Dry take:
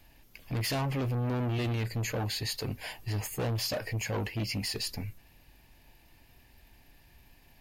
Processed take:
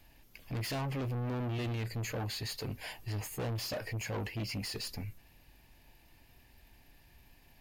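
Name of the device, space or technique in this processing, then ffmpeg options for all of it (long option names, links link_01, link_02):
saturation between pre-emphasis and de-emphasis: -af "highshelf=frequency=5700:gain=8.5,asoftclip=type=tanh:threshold=-29.5dB,highshelf=frequency=5700:gain=-8.5,volume=-2dB"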